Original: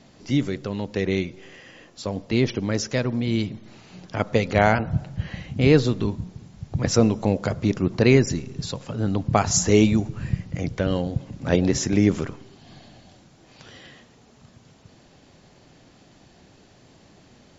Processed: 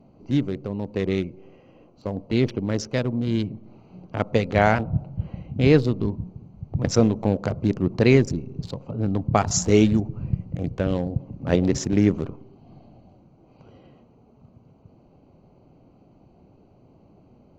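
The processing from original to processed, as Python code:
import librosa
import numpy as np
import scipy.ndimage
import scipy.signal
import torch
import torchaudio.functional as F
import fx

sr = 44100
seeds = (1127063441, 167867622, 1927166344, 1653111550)

y = fx.wiener(x, sr, points=25)
y = fx.high_shelf(y, sr, hz=6800.0, db=-4.5)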